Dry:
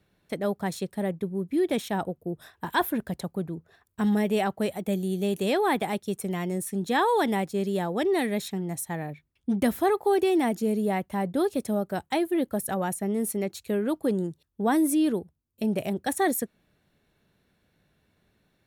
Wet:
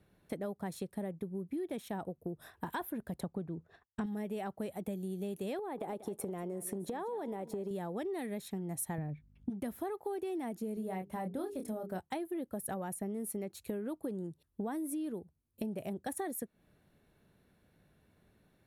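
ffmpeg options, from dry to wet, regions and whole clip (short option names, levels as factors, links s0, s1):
-filter_complex "[0:a]asettb=1/sr,asplit=3[s0][s1][s2];[s0]atrim=end=3.234[s3];[s1]atrim=start=3.23:end=4.06,asetpts=PTS-STARTPTS,afade=t=in:d=0.004:c=qsin,afade=t=out:st=0.826:d=0.004:c=qsin,lowpass=5900,agate=range=0.0224:threshold=0.00178:ratio=3:release=100:detection=peak,acontrast=37[s4];[s2]atrim=start=4.056[s5];[s3][s4]acrossfade=d=0.004:c1=hsin:c2=qsin[s6];[s6][s5]acrossfade=d=0.004:c1=qsin:c2=hsin,asettb=1/sr,asplit=3[s7][s8][s9];[s7]atrim=end=5.594[s10];[s8]atrim=start=5.59:end=7.71,asetpts=PTS-STARTPTS,afade=t=in:d=0.004:c=qsin,afade=t=out:st=2.116:d=0.004:c=qsin,equalizer=f=510:t=o:w=1.9:g=12,acompressor=threshold=0.0447:ratio=6:attack=3.2:release=140:knee=1:detection=peak,aecho=1:1:189|378|567:0.141|0.0438|0.0136,atrim=end_sample=93492[s11];[s9]atrim=start=7.706[s12];[s10][s11]acrossfade=d=0.004:c1=hsin:c2=qsin[s13];[s13][s12]acrossfade=d=0.004:c1=qsin:c2=hsin,asettb=1/sr,asplit=3[s14][s15][s16];[s14]atrim=end=8.984[s17];[s15]atrim=start=8.98:end=9.5,asetpts=PTS-STARTPTS,afade=t=in:d=0.004:c=qsin,afade=t=out:st=0.516:d=0.004:c=qsin,bass=f=250:g=11,treble=f=4000:g=-10,aeval=exprs='val(0)+0.000794*(sin(2*PI*50*n/s)+sin(2*PI*2*50*n/s)/2+sin(2*PI*3*50*n/s)/3+sin(2*PI*4*50*n/s)/4+sin(2*PI*5*50*n/s)/5)':c=same[s18];[s16]atrim=start=9.496[s19];[s17][s18]acrossfade=d=0.004:c1=hsin:c2=qsin[s20];[s20][s19]acrossfade=d=0.004:c1=qsin:c2=hsin,asettb=1/sr,asplit=3[s21][s22][s23];[s21]atrim=end=10.744[s24];[s22]atrim=start=10.74:end=12,asetpts=PTS-STARTPTS,afade=t=in:d=0.004:c=qsin,afade=t=out:st=1.256:d=0.004:c=qsin,bandreject=f=50:t=h:w=6,bandreject=f=100:t=h:w=6,bandreject=f=150:t=h:w=6,bandreject=f=200:t=h:w=6,bandreject=f=250:t=h:w=6,bandreject=f=300:t=h:w=6,bandreject=f=350:t=h:w=6,bandreject=f=400:t=h:w=6,bandreject=f=450:t=h:w=6,asplit=2[s25][s26];[s26]adelay=27,volume=0.531[s27];[s25][s27]amix=inputs=2:normalize=0,atrim=end_sample=55566[s28];[s23]atrim=start=11.996[s29];[s24][s28]acrossfade=d=0.004:c1=hsin:c2=qsin[s30];[s30][s29]acrossfade=d=0.004:c1=qsin:c2=hsin,highshelf=f=2000:g=-8.5,acompressor=threshold=0.0141:ratio=8,equalizer=f=11000:t=o:w=0.66:g=9.5,volume=1.12"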